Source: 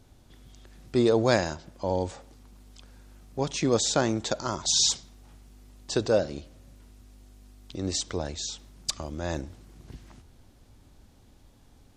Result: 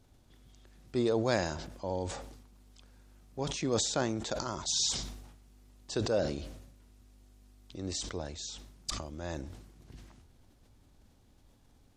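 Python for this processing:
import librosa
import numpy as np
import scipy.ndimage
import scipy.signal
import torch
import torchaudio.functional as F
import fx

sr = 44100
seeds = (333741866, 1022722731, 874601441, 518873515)

y = fx.sustainer(x, sr, db_per_s=54.0)
y = F.gain(torch.from_numpy(y), -7.5).numpy()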